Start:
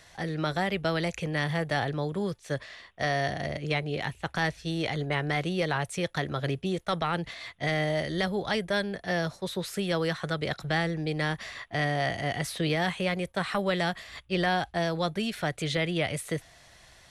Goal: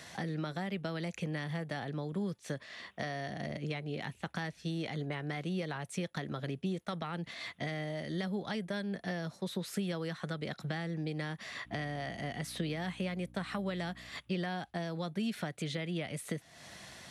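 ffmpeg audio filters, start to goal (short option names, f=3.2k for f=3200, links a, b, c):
-filter_complex "[0:a]acompressor=threshold=-44dB:ratio=4,equalizer=f=210:t=o:w=1.3:g=11,asettb=1/sr,asplit=3[a][b][c];[a]atrim=end=11.654[d];[b]atrim=start=11.65:end=14.09,asetpts=PTS-STARTPTS,afade=t=in:d=0.004:c=qsin,afade=t=out:st=2.436:d=0.004:c=qsin,aeval=exprs='val(0)+0.00251*(sin(2*PI*60*n/s)+sin(2*PI*2*60*n/s)/2+sin(2*PI*3*60*n/s)/3+sin(2*PI*4*60*n/s)/4+sin(2*PI*5*60*n/s)/5)':c=same[e];[c]atrim=start=14.086[f];[d][e]acrossfade=d=0.004:c1=hsin:c2=qsin[g];[g][f]acrossfade=d=0.004:c1=qsin:c2=hsin,highpass=79,lowshelf=f=410:g=-4.5,volume=4.5dB"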